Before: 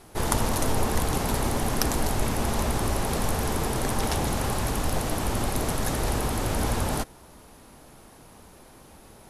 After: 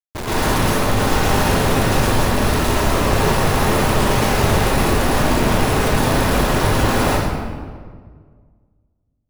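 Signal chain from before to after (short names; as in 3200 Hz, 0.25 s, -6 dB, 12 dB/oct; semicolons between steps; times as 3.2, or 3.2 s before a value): 2.33–2.82 comb 3.1 ms, depth 80%; Schmitt trigger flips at -33.5 dBFS; reverb RT60 1.7 s, pre-delay 0.104 s, DRR -9.5 dB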